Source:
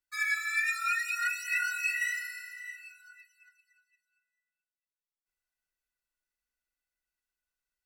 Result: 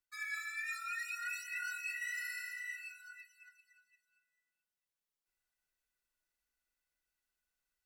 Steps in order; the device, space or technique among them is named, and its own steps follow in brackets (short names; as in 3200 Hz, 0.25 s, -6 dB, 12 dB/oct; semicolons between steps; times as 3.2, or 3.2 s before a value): compression on the reversed sound (reverse; compressor 6:1, threshold -40 dBFS, peak gain reduction 14.5 dB; reverse); gain +1 dB